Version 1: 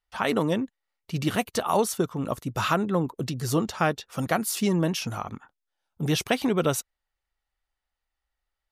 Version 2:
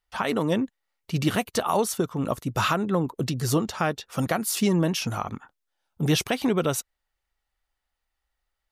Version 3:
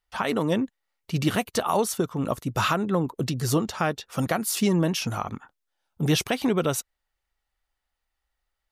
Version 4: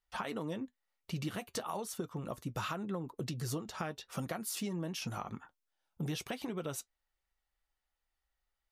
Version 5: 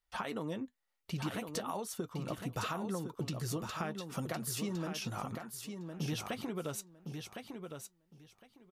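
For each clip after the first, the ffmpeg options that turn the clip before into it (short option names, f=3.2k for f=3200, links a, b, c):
-af "alimiter=limit=-15dB:level=0:latency=1:release=256,volume=3dB"
-af anull
-af "acompressor=threshold=-30dB:ratio=5,flanger=delay=5.1:depth=1.5:regen=-66:speed=0.96:shape=triangular,volume=-1.5dB"
-af "aecho=1:1:1059|2118|3177:0.473|0.0804|0.0137"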